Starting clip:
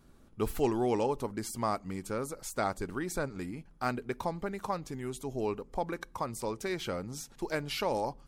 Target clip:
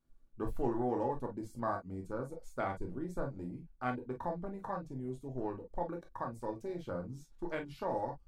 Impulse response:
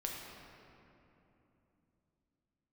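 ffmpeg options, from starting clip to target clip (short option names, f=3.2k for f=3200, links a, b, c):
-filter_complex "[0:a]afwtdn=0.0141[a];[1:a]atrim=start_sample=2205,afade=t=out:st=0.15:d=0.01,atrim=end_sample=7056,asetrate=83790,aresample=44100[b];[a][b]afir=irnorm=-1:irlink=0,volume=2.5dB"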